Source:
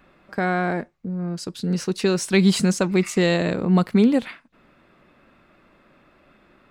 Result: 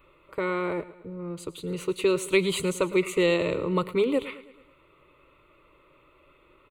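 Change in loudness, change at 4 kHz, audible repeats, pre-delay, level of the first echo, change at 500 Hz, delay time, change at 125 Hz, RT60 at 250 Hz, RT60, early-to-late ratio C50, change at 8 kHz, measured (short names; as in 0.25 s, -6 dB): -5.5 dB, -4.5 dB, 4, none, -17.0 dB, -1.0 dB, 0.108 s, -12.0 dB, none, none, none, -6.5 dB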